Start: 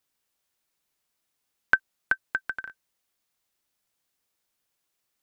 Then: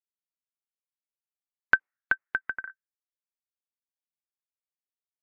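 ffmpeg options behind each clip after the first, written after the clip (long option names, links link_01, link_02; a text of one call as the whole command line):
ffmpeg -i in.wav -af "afftdn=noise_reduction=35:noise_floor=-50" out.wav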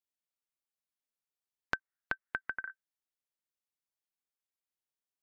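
ffmpeg -i in.wav -af "acompressor=threshold=-30dB:ratio=6,volume=-1.5dB" out.wav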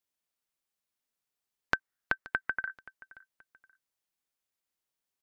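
ffmpeg -i in.wav -af "aecho=1:1:527|1054:0.1|0.031,volume=5dB" out.wav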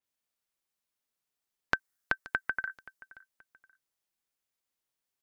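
ffmpeg -i in.wav -af "adynamicequalizer=threshold=0.00282:dfrequency=4500:dqfactor=0.7:tfrequency=4500:tqfactor=0.7:attack=5:release=100:ratio=0.375:range=4:mode=boostabove:tftype=highshelf" out.wav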